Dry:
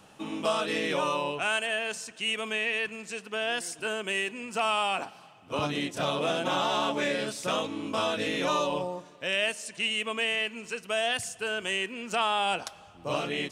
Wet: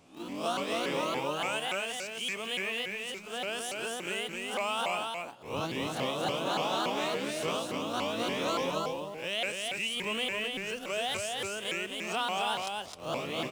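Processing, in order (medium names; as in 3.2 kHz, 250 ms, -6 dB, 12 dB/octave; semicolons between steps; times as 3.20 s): reverse spectral sustain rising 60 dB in 0.41 s; peaking EQ 1.7 kHz -5 dB 0.51 oct; in parallel at -10.5 dB: word length cut 6-bit, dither none; 4.95–5.56 s: on the sum: band-stop 5.3 kHz, Q 5.1; 9.97–10.79 s: bass shelf 170 Hz +11 dB; on a send: delay 263 ms -3.5 dB; on the sum: vibrato with a chosen wave saw up 3.5 Hz, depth 250 cents; trim -7.5 dB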